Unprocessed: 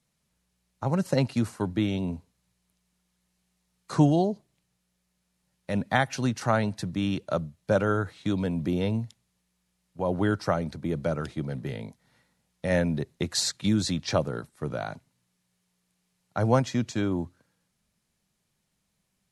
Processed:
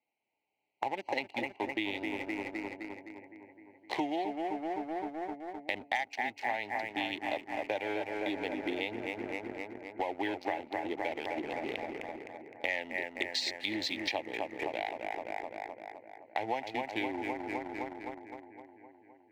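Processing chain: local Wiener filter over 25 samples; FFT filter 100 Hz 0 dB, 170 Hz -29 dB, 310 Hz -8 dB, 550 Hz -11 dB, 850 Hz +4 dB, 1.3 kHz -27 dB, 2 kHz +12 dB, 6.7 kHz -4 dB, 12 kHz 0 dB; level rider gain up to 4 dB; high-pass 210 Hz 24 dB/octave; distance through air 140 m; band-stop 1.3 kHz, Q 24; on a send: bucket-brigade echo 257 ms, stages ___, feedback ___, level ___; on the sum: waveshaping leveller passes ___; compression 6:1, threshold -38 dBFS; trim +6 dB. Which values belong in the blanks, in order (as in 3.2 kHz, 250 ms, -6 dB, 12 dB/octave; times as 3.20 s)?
4096, 66%, -7 dB, 1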